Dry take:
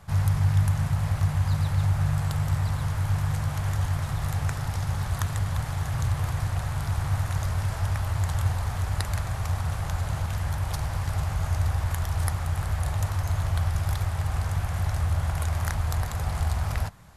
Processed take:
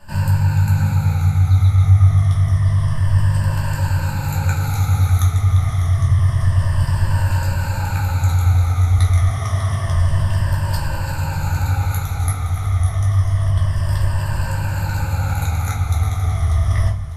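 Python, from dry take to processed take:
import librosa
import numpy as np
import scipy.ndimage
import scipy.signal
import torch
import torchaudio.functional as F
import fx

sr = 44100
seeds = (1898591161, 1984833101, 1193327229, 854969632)

y = fx.spec_ripple(x, sr, per_octave=1.3, drift_hz=-0.28, depth_db=16)
y = fx.high_shelf(y, sr, hz=9100.0, db=6.5, at=(4.62, 5.28))
y = fx.highpass(y, sr, hz=140.0, slope=12, at=(9.26, 9.86))
y = fx.rider(y, sr, range_db=3, speed_s=0.5)
y = fx.echo_feedback(y, sr, ms=598, feedback_pct=44, wet_db=-15)
y = fx.room_shoebox(y, sr, seeds[0], volume_m3=240.0, walls='furnished', distance_m=2.6)
y = y * 10.0 ** (-3.0 / 20.0)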